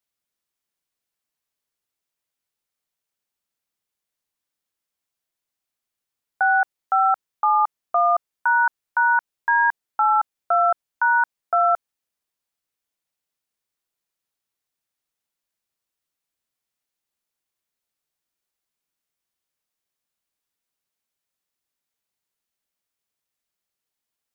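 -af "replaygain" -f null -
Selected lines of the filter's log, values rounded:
track_gain = +3.0 dB
track_peak = 0.194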